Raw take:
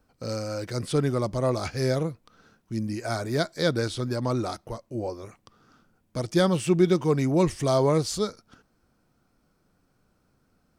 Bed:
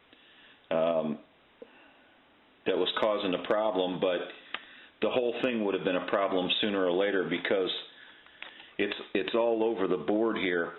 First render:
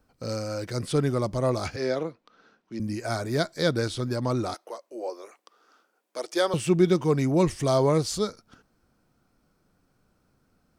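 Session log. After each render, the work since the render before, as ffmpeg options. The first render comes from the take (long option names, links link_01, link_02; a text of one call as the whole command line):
ffmpeg -i in.wav -filter_complex "[0:a]asettb=1/sr,asplit=3[link_01][link_02][link_03];[link_01]atrim=end=1.764[link_04];[link_02]atrim=start=1.76:end=2.8,asetpts=PTS-STARTPTS,afade=type=in:duration=0.004:curve=qsin,afade=type=out:start_time=1.036:duration=0.004:curve=qsin,acrossover=split=220 5600:gain=0.1 1 0.112[link_05][link_06][link_07];[link_05][link_06][link_07]amix=inputs=3:normalize=0[link_08];[link_03]atrim=start=2.796[link_09];[link_04][link_08]acrossfade=duration=0.004:curve1=hsin:curve2=qsin[link_10];[link_10][link_09]acrossfade=duration=0.004:curve1=qsin:curve2=hsin,asettb=1/sr,asplit=3[link_11][link_12][link_13];[link_11]atrim=end=4.544[link_14];[link_12]atrim=start=4.54:end=6.54,asetpts=PTS-STARTPTS,afade=type=in:duration=0.004:curve=qsin,afade=type=out:start_time=1.996:duration=0.004:curve=qsin,highpass=frequency=380:width=0.5412,highpass=frequency=380:width=1.3066[link_15];[link_13]atrim=start=6.536[link_16];[link_14][link_15]acrossfade=duration=0.004:curve1=hsin:curve2=qsin[link_17];[link_17][link_16]acrossfade=duration=0.004:curve1=qsin:curve2=hsin" out.wav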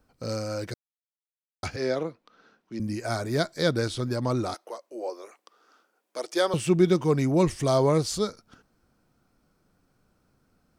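ffmpeg -i in.wav -filter_complex "[0:a]asplit=3[link_01][link_02][link_03];[link_01]atrim=end=0.74,asetpts=PTS-STARTPTS,afade=type=out:start_time=0.736:duration=0.004:curve=hsin[link_04];[link_02]atrim=start=0.74:end=1.63,asetpts=PTS-STARTPTS,volume=0[link_05];[link_03]atrim=start=1.63,asetpts=PTS-STARTPTS,afade=type=in:duration=0.004:curve=hsin[link_06];[link_04][link_05][link_06]concat=n=3:v=0:a=1" out.wav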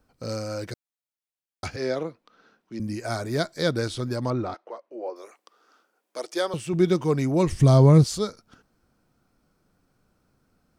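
ffmpeg -i in.wav -filter_complex "[0:a]asettb=1/sr,asplit=3[link_01][link_02][link_03];[link_01]atrim=end=4.304[link_04];[link_02]atrim=start=4.3:end=5.16,asetpts=PTS-STARTPTS,afade=type=in:duration=0.004:curve=qsin,afade=type=out:start_time=0.856:duration=0.004:curve=qsin,lowpass=2500[link_05];[link_03]atrim=start=5.156[link_06];[link_04][link_05]acrossfade=duration=0.004:curve1=hsin:curve2=qsin[link_07];[link_07][link_06]acrossfade=duration=0.004:curve1=qsin:curve2=hsin,asettb=1/sr,asplit=3[link_08][link_09][link_10];[link_08]atrim=end=7.514[link_11];[link_09]atrim=start=7.51:end=8.04,asetpts=PTS-STARTPTS,afade=type=in:duration=0.004:curve=qsin,afade=type=out:start_time=0.526:duration=0.004:curve=qsin,bass=frequency=250:gain=15,treble=frequency=4000:gain=-1[link_12];[link_10]atrim=start=8.036[link_13];[link_11][link_12]acrossfade=duration=0.004:curve1=hsin:curve2=qsin[link_14];[link_14][link_13]acrossfade=duration=0.004:curve1=qsin:curve2=hsin,asplit=2[link_15][link_16];[link_15]atrim=end=6.73,asetpts=PTS-STARTPTS,afade=type=out:start_time=6.22:duration=0.51:silence=0.446684[link_17];[link_16]atrim=start=6.73,asetpts=PTS-STARTPTS,afade=type=in:duration=0.004:curve=hsin:silence=0.446684[link_18];[link_17][link_18]concat=n=2:v=0:a=1" out.wav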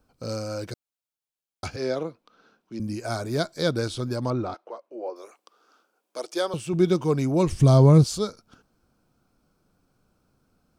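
ffmpeg -i in.wav -af "equalizer=frequency=1900:width_type=o:width=0.27:gain=-8" out.wav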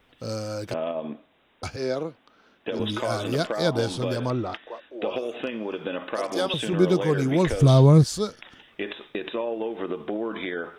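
ffmpeg -i in.wav -i bed.wav -filter_complex "[1:a]volume=-2dB[link_01];[0:a][link_01]amix=inputs=2:normalize=0" out.wav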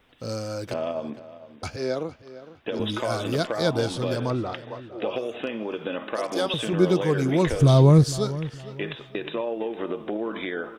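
ffmpeg -i in.wav -filter_complex "[0:a]asplit=2[link_01][link_02];[link_02]adelay=458,lowpass=frequency=3500:poles=1,volume=-15.5dB,asplit=2[link_03][link_04];[link_04]adelay=458,lowpass=frequency=3500:poles=1,volume=0.33,asplit=2[link_05][link_06];[link_06]adelay=458,lowpass=frequency=3500:poles=1,volume=0.33[link_07];[link_01][link_03][link_05][link_07]amix=inputs=4:normalize=0" out.wav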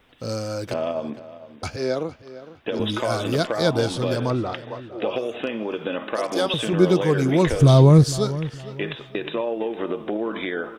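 ffmpeg -i in.wav -af "volume=3dB,alimiter=limit=-3dB:level=0:latency=1" out.wav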